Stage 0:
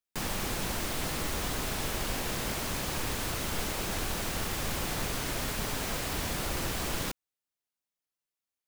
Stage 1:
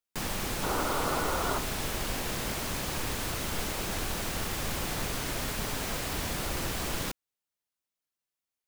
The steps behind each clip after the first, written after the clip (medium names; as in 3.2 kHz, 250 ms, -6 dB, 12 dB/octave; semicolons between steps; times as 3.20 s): painted sound noise, 0.62–1.59 s, 240–1500 Hz -32 dBFS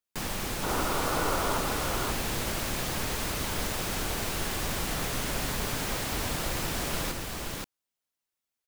delay 527 ms -3 dB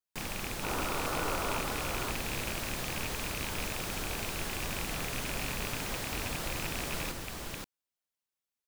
rattle on loud lows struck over -33 dBFS, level -20 dBFS; trim -5 dB